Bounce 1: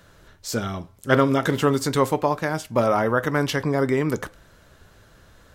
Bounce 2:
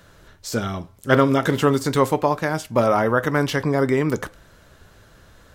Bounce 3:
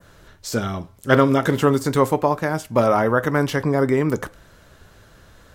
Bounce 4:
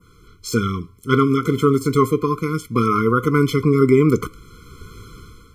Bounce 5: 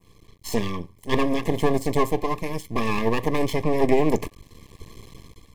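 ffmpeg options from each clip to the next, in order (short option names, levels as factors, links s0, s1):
-af "deesser=0.55,volume=1.26"
-af "adynamicequalizer=threshold=0.0112:dfrequency=3700:dqfactor=0.7:tfrequency=3700:tqfactor=0.7:attack=5:release=100:ratio=0.375:range=2.5:mode=cutabove:tftype=bell,volume=1.12"
-af "dynaudnorm=f=200:g=5:m=3.98,afftfilt=real='re*eq(mod(floor(b*sr/1024/500),2),0)':imag='im*eq(mod(floor(b*sr/1024/500),2),0)':win_size=1024:overlap=0.75"
-af "aeval=exprs='max(val(0),0)':c=same,asuperstop=centerf=1400:order=12:qfactor=2.9"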